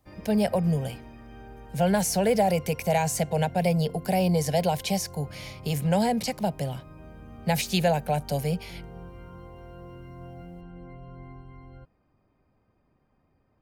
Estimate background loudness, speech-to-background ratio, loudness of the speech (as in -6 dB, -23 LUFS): -45.0 LUFS, 19.0 dB, -26.0 LUFS